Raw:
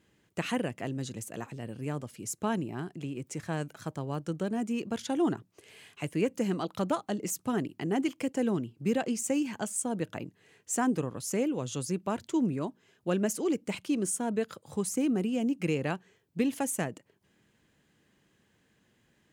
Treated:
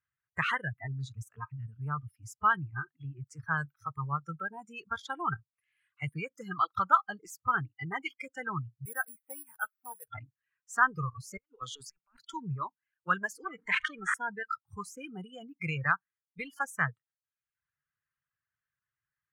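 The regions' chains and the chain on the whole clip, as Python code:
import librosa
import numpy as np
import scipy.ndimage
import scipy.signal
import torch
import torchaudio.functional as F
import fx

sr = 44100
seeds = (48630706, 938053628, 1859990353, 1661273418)

y = fx.chain(x, sr, fx.highpass(hz=760.0, slope=6),
    fx.air_absorb(metres=320.0),
    fx.resample_bad(factor=4, down='filtered', up='zero_stuff'), at=(8.85, 10.08))
y = fx.chain(y, sr, fx.highpass(hz=300.0, slope=12),
    fx.over_compress(threshold_db=-39.0, ratio=-0.5), at=(11.37, 12.34))
y = fx.chain(y, sr, fx.halfwave_gain(db=-12.0),
    fx.cabinet(low_hz=160.0, low_slope=24, high_hz=8000.0, hz=(570.0, 1800.0, 5000.0), db=(-4, 10, -10)),
    fx.env_flatten(amount_pct=70), at=(13.44, 14.14))
y = fx.noise_reduce_blind(y, sr, reduce_db=28)
y = fx.curve_eq(y, sr, hz=(140.0, 240.0, 680.0, 1300.0, 5100.0, 8800.0), db=(0, -26, -14, 12, -14, -19))
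y = fx.dereverb_blind(y, sr, rt60_s=0.62)
y = y * librosa.db_to_amplitude(5.0)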